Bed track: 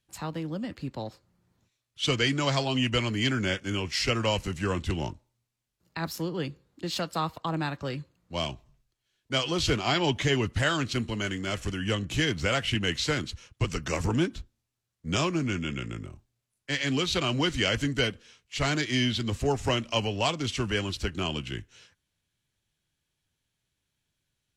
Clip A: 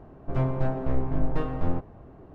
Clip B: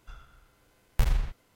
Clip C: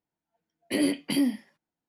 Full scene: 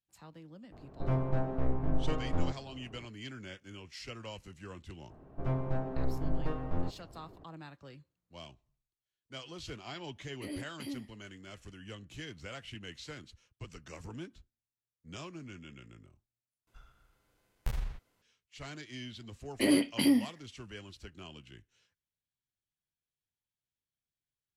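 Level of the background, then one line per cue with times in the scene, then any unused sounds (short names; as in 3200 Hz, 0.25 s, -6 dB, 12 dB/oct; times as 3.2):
bed track -18 dB
0.72 add A -5 dB
5.1 add A -7 dB
9.7 add C -16.5 dB
16.67 replace with B -9.5 dB
18.89 add C -1 dB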